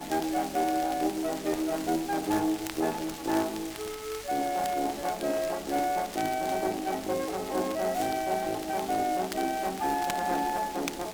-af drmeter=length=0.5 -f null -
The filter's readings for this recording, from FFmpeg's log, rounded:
Channel 1: DR: 12.7
Overall DR: 12.7